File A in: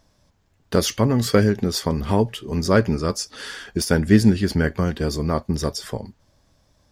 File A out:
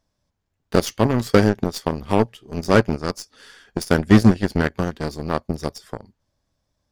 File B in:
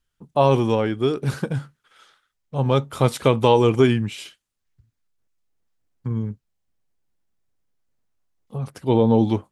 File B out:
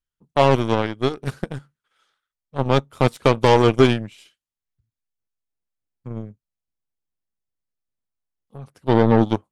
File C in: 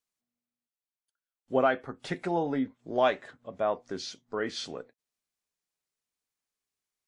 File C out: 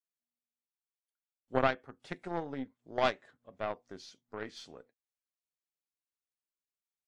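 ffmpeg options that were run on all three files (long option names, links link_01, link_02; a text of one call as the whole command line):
ffmpeg -i in.wav -af "aeval=exprs='0.841*(cos(1*acos(clip(val(0)/0.841,-1,1)))-cos(1*PI/2))+0.211*(cos(2*acos(clip(val(0)/0.841,-1,1)))-cos(2*PI/2))+0.0531*(cos(4*acos(clip(val(0)/0.841,-1,1)))-cos(4*PI/2))+0.106*(cos(7*acos(clip(val(0)/0.841,-1,1)))-cos(7*PI/2))+0.0119*(cos(8*acos(clip(val(0)/0.841,-1,1)))-cos(8*PI/2))':channel_layout=same,acontrast=74,volume=-1dB" out.wav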